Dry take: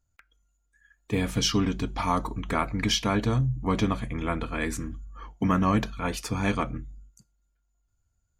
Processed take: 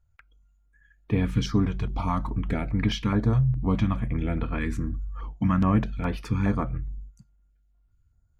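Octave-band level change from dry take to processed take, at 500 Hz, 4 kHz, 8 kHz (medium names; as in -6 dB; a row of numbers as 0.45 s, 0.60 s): -2.5 dB, -8.0 dB, under -10 dB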